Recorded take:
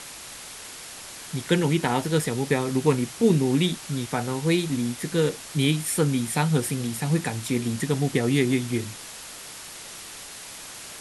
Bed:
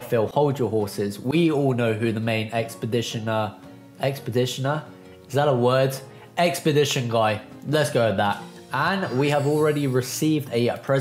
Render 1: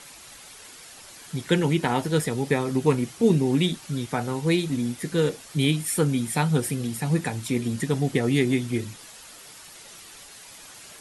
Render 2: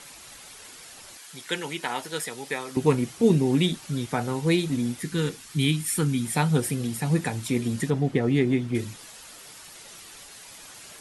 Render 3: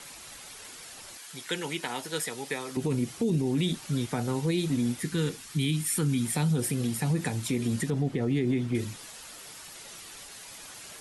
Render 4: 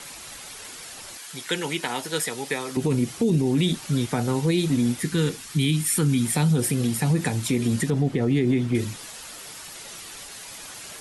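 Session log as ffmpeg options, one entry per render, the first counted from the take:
-af "afftdn=nr=8:nf=-41"
-filter_complex "[0:a]asettb=1/sr,asplit=3[a][b][c];[a]atrim=end=1.174[d];[b]atrim=start=1.17:end=2.77,asetpts=PTS-STARTPTS,afade=t=in:d=0.004:c=qsin,afade=t=out:st=1.596:d=0.004:c=qsin,highpass=f=1.2k:p=1[e];[c]atrim=start=2.766[f];[d][e]acrossfade=d=0.004:c1=hsin:c2=qsin[g];[g][f]acrossfade=d=0.004:c1=qsin:c2=hsin,asettb=1/sr,asplit=3[h][i][j];[h]atrim=end=5.014[k];[i]atrim=start=5.01:end=6.25,asetpts=PTS-STARTPTS,afade=t=in:d=0.004:c=qsin,afade=t=out:st=1.236:d=0.004:c=qsin,equalizer=f=580:w=1.8:g=-13[l];[j]atrim=start=6.246[m];[k][l]acrossfade=d=0.004:c1=hsin:c2=qsin[n];[n][m]acrossfade=d=0.004:c1=qsin:c2=hsin,asettb=1/sr,asplit=3[o][p][q];[o]atrim=end=7.904[r];[p]atrim=start=7.9:end=8.75,asetpts=PTS-STARTPTS,afade=t=in:d=0.004:c=qsin,afade=t=out:st=0.846:d=0.004:c=qsin,lowpass=f=1.9k:p=1[s];[q]atrim=start=8.746[t];[r][s]acrossfade=d=0.004:c1=hsin:c2=qsin[u];[u][t]acrossfade=d=0.004:c1=qsin:c2=hsin"
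-filter_complex "[0:a]acrossover=split=450|3000[a][b][c];[b]acompressor=threshold=-33dB:ratio=6[d];[a][d][c]amix=inputs=3:normalize=0,alimiter=limit=-19dB:level=0:latency=1:release=57"
-af "volume=5.5dB"

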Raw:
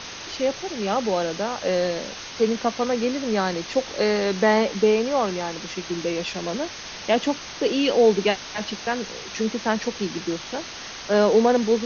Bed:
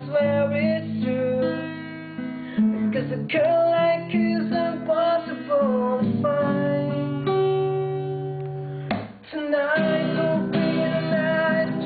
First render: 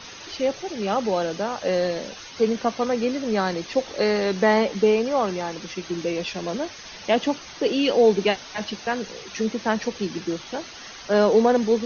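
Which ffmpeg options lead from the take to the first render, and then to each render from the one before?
-af "afftdn=nr=9:nf=-37"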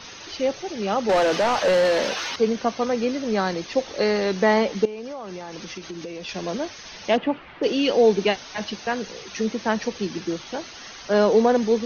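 -filter_complex "[0:a]asettb=1/sr,asplit=3[a][b][c];[a]atrim=end=1.094[d];[b]atrim=start=1.09:end=2.36,asetpts=PTS-STARTPTS,afade=t=in:d=0.004:c=qsin,afade=t=out:st=1.266:d=0.004:c=qsin,asplit=2[e][f];[f]highpass=f=720:p=1,volume=23dB,asoftclip=type=tanh:threshold=-11.5dB[g];[e][g]amix=inputs=2:normalize=0,lowpass=f=2.5k:p=1,volume=-6dB[h];[c]atrim=start=2.356[i];[d][h]acrossfade=d=0.004:c1=hsin:c2=qsin[j];[j][i]acrossfade=d=0.004:c1=qsin:c2=hsin,asettb=1/sr,asplit=3[k][l][m];[k]atrim=end=4.854[n];[l]atrim=start=4.85:end=6.29,asetpts=PTS-STARTPTS,afade=t=in:d=0.004:c=qsin,afade=t=out:st=1.436:d=0.004:c=qsin,acompressor=threshold=-30dB:ratio=10:attack=3.2:release=140:knee=1:detection=peak[o];[m]atrim=start=6.286[p];[n][o]acrossfade=d=0.004:c1=hsin:c2=qsin[q];[q][p]acrossfade=d=0.004:c1=qsin:c2=hsin,asplit=3[r][s][t];[r]afade=t=out:st=7.16:d=0.02[u];[s]lowpass=f=2.7k:w=0.5412,lowpass=f=2.7k:w=1.3066,afade=t=in:st=7.16:d=0.02,afade=t=out:st=7.62:d=0.02[v];[t]afade=t=in:st=7.62:d=0.02[w];[u][v][w]amix=inputs=3:normalize=0"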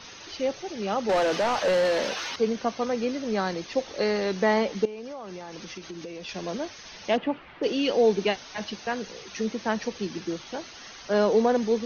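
-af "volume=-4dB"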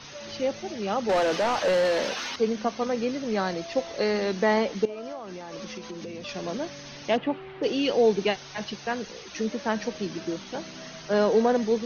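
-filter_complex "[1:a]volume=-22dB[a];[0:a][a]amix=inputs=2:normalize=0"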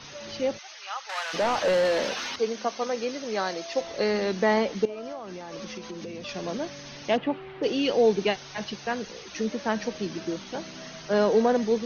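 -filter_complex "[0:a]asplit=3[a][b][c];[a]afade=t=out:st=0.57:d=0.02[d];[b]highpass=f=1k:w=0.5412,highpass=f=1k:w=1.3066,afade=t=in:st=0.57:d=0.02,afade=t=out:st=1.33:d=0.02[e];[c]afade=t=in:st=1.33:d=0.02[f];[d][e][f]amix=inputs=3:normalize=0,asettb=1/sr,asplit=3[g][h][i];[g]atrim=end=2.394[j];[h]atrim=start=2.39:end=3.81,asetpts=PTS-STARTPTS,afade=t=in:d=0.004:c=qsin,afade=t=out:st=1.416:d=0.004:c=qsin,bass=f=250:g=-13,treble=f=4k:g=4[k];[i]atrim=start=3.806[l];[j][k]acrossfade=d=0.004:c1=hsin:c2=qsin[m];[m][l]acrossfade=d=0.004:c1=qsin:c2=hsin"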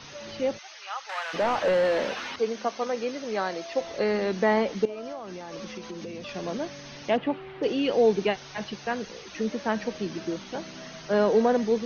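-filter_complex "[0:a]acrossover=split=3100[a][b];[b]acompressor=threshold=-45dB:ratio=4:attack=1:release=60[c];[a][c]amix=inputs=2:normalize=0"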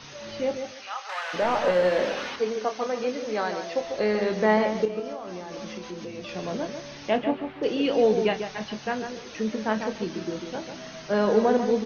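-filter_complex "[0:a]asplit=2[a][b];[b]adelay=28,volume=-9.5dB[c];[a][c]amix=inputs=2:normalize=0,asplit=2[d][e];[e]adelay=145,lowpass=f=2k:p=1,volume=-7dB,asplit=2[f][g];[g]adelay=145,lowpass=f=2k:p=1,volume=0.22,asplit=2[h][i];[i]adelay=145,lowpass=f=2k:p=1,volume=0.22[j];[d][f][h][j]amix=inputs=4:normalize=0"

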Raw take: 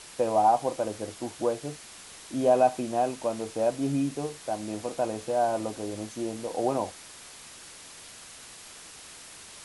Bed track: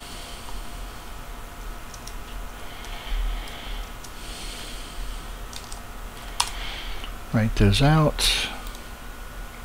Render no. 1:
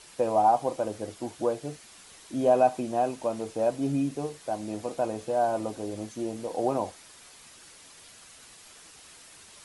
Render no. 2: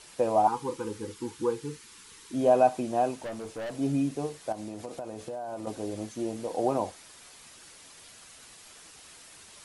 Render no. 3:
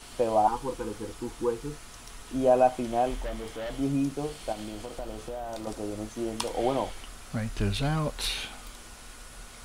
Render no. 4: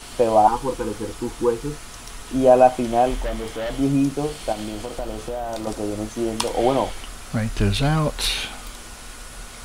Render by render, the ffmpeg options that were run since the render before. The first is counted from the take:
-af "afftdn=nr=6:nf=-47"
-filter_complex "[0:a]asettb=1/sr,asplit=3[a][b][c];[a]atrim=end=0.474[d];[b]atrim=start=0.47:end=2.34,asetpts=PTS-STARTPTS,afade=t=in:d=0.004:c=qsin,afade=t=out:st=1.866:d=0.004:c=qsin,asuperstop=centerf=650:order=20:qfactor=2.1[e];[c]atrim=start=2.336[f];[d][e]acrossfade=d=0.004:c1=hsin:c2=qsin[g];[g][f]acrossfade=d=0.004:c1=qsin:c2=hsin,asettb=1/sr,asplit=3[h][i][j];[h]atrim=end=3.174[k];[i]atrim=start=3.17:end=3.75,asetpts=PTS-STARTPTS,afade=t=in:d=0.004:c=qsin,afade=t=out:st=0.576:d=0.004:c=qsin,aeval=exprs='(tanh(44.7*val(0)+0.15)-tanh(0.15))/44.7':c=same[l];[j]atrim=start=3.746[m];[k][l]acrossfade=d=0.004:c1=hsin:c2=qsin[n];[n][m]acrossfade=d=0.004:c1=qsin:c2=hsin,asettb=1/sr,asplit=3[o][p][q];[o]atrim=end=4.524[r];[p]atrim=start=4.52:end=5.67,asetpts=PTS-STARTPTS,afade=t=in:d=0.004:c=qsin,afade=t=out:st=1.146:d=0.004:c=qsin,acompressor=threshold=-33dB:ratio=10:attack=3.2:release=140:knee=1:detection=peak[s];[q]atrim=start=5.666[t];[r][s]acrossfade=d=0.004:c1=hsin:c2=qsin[u];[u][t]acrossfade=d=0.004:c1=qsin:c2=hsin"
-filter_complex "[1:a]volume=-10dB[a];[0:a][a]amix=inputs=2:normalize=0"
-af "volume=8dB"

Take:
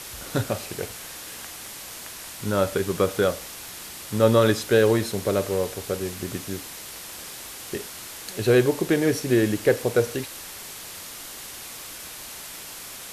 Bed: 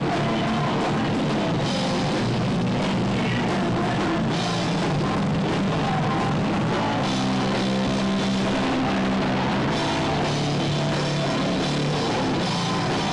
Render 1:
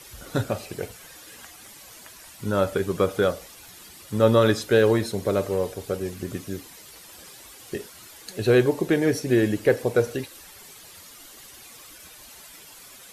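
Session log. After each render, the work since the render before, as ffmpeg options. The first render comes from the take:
-af "afftdn=nr=11:nf=-39"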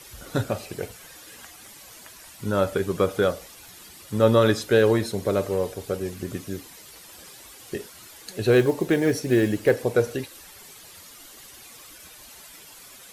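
-filter_complex "[0:a]asettb=1/sr,asplit=3[a][b][c];[a]atrim=end=8.524[d];[b]atrim=start=8.52:end=9.71,asetpts=PTS-STARTPTS,afade=t=in:d=0.004:c=qsin,afade=t=out:st=1.186:d=0.004:c=qsin,acrusher=bits=8:mode=log:mix=0:aa=0.000001[e];[c]atrim=start=9.706[f];[d][e]acrossfade=d=0.004:c1=hsin:c2=qsin[g];[g][f]acrossfade=d=0.004:c1=qsin:c2=hsin"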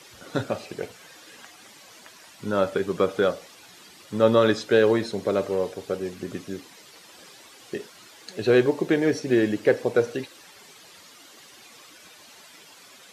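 -filter_complex "[0:a]highpass=160,acrossover=split=7000[a][b];[b]acompressor=threshold=-60dB:ratio=4:attack=1:release=60[c];[a][c]amix=inputs=2:normalize=0"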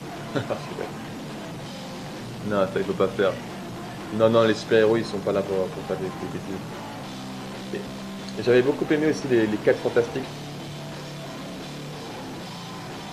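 -filter_complex "[1:a]volume=-12.5dB[a];[0:a][a]amix=inputs=2:normalize=0"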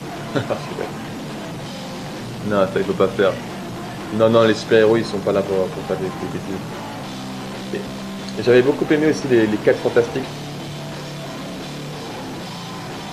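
-af "volume=5.5dB,alimiter=limit=-3dB:level=0:latency=1"

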